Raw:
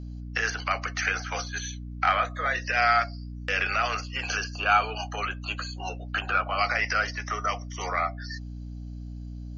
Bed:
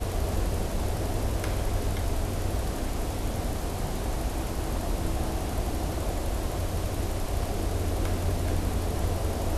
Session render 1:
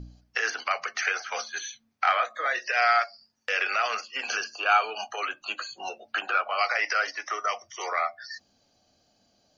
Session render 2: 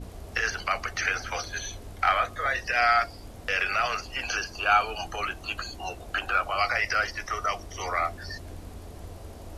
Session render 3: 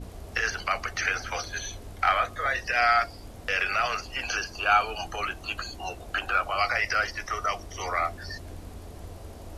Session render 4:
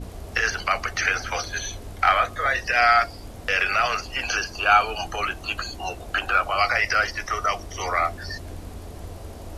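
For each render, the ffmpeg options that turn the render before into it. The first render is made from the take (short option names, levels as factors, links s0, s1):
-af "bandreject=f=60:t=h:w=4,bandreject=f=120:t=h:w=4,bandreject=f=180:t=h:w=4,bandreject=f=240:t=h:w=4,bandreject=f=300:t=h:w=4"
-filter_complex "[1:a]volume=0.2[s0];[0:a][s0]amix=inputs=2:normalize=0"
-af anull
-af "volume=1.68"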